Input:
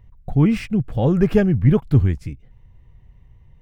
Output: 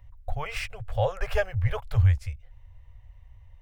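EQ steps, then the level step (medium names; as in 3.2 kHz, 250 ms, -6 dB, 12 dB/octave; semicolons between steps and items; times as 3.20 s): elliptic band-stop 100–550 Hz, stop band 40 dB; 0.0 dB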